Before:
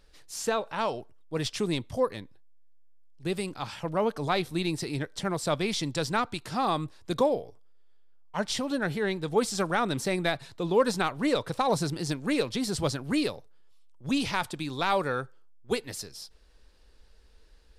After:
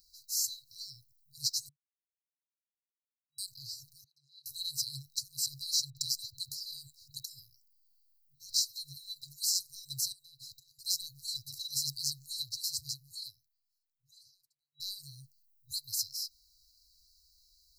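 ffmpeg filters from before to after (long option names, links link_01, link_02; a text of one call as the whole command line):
ffmpeg -i in.wav -filter_complex "[0:a]asettb=1/sr,asplit=3[link_01][link_02][link_03];[link_01]atrim=end=4.044[link_04];[link_02]atrim=start=4.04:end=4.46,asetpts=PTS-STARTPTS,afade=type=in:duration=0.004:curve=qsin,afade=type=out:start_time=0.416:duration=0.004:curve=qsin,asplit=3[link_05][link_06][link_07];[link_05]bandpass=frequency=530:width_type=q:width=8,volume=0dB[link_08];[link_06]bandpass=frequency=1840:width_type=q:width=8,volume=-6dB[link_09];[link_07]bandpass=frequency=2480:width_type=q:width=8,volume=-9dB[link_10];[link_08][link_09][link_10]amix=inputs=3:normalize=0[link_11];[link_03]atrim=start=4.456[link_12];[link_04][link_11]acrossfade=duration=0.004:curve1=hsin:curve2=qsin[link_13];[link_13][link_12]acrossfade=duration=0.004:curve1=qsin:curve2=hsin,asettb=1/sr,asplit=3[link_14][link_15][link_16];[link_14]atrim=end=5.904[link_17];[link_15]atrim=start=5.9:end=8.97,asetpts=PTS-STARTPTS,afade=type=in:duration=0.004:curve=qsin,afade=type=out:start_time=3.066:duration=0.004:curve=qsin,acrossover=split=2000[link_18][link_19];[link_19]adelay=60[link_20];[link_18][link_20]amix=inputs=2:normalize=0,atrim=end_sample=135387[link_21];[link_16]atrim=start=8.966[link_22];[link_17][link_21]acrossfade=duration=0.004:curve1=hsin:curve2=qsin[link_23];[link_23][link_22]acrossfade=duration=0.004:curve1=qsin:curve2=hsin,asettb=1/sr,asplit=3[link_24][link_25][link_26];[link_24]atrim=end=10.124[link_27];[link_25]atrim=start=10.12:end=10.79,asetpts=PTS-STARTPTS,afade=type=in:duration=0.004:curve=qsin,afade=type=out:start_time=0.666:duration=0.004:curve=qsin,acompressor=threshold=-39dB:ratio=10:attack=3.2:release=140:knee=1:detection=peak[link_28];[link_26]atrim=start=10.786[link_29];[link_27][link_28]acrossfade=duration=0.004:curve1=hsin:curve2=qsin[link_30];[link_30][link_29]acrossfade=duration=0.004:curve1=qsin:curve2=hsin,asplit=4[link_31][link_32][link_33][link_34];[link_31]atrim=end=1.69,asetpts=PTS-STARTPTS,afade=type=out:start_time=1.686:duration=0.004:curve=hsin[link_35];[link_32]atrim=start=1.69:end=3.38,asetpts=PTS-STARTPTS,volume=0[link_36];[link_33]atrim=start=3.38:end=14.8,asetpts=PTS-STARTPTS,afade=type=in:duration=0.004:curve=hsin,afade=type=out:start_time=8.79:duration=2.63:curve=qua[link_37];[link_34]atrim=start=14.8,asetpts=PTS-STARTPTS,afade=type=in:duration=0.004:curve=hsin[link_38];[link_35][link_36][link_37][link_38]concat=n=4:v=0:a=1,aemphasis=mode=production:type=riaa,afftfilt=real='re*(1-between(b*sr/4096,140,3900))':imag='im*(1-between(b*sr/4096,140,3900))':win_size=4096:overlap=0.75,equalizer=frequency=9400:width_type=o:width=0.69:gain=-14" out.wav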